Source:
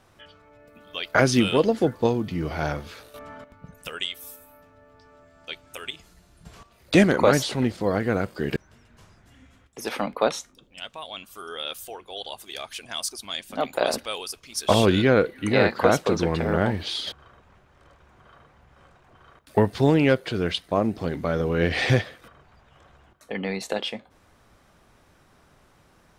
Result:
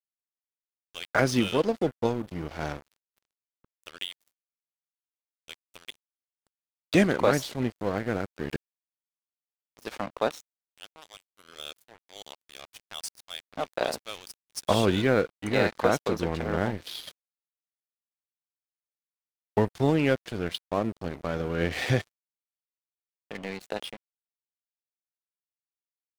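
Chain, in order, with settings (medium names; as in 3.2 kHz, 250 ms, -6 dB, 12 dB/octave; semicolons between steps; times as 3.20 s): crossover distortion -33 dBFS; trim -3.5 dB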